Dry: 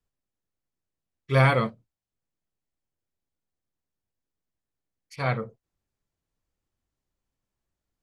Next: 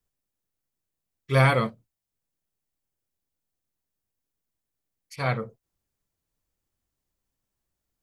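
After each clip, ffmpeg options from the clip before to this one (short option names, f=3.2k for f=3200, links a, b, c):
-af "highshelf=f=7.8k:g=9.5"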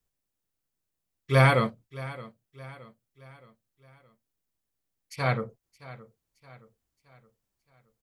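-af "aecho=1:1:620|1240|1860|2480:0.126|0.0579|0.0266|0.0123"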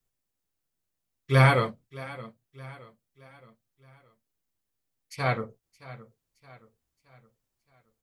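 -af "flanger=delay=7.5:depth=5.1:regen=-41:speed=0.81:shape=sinusoidal,volume=4dB"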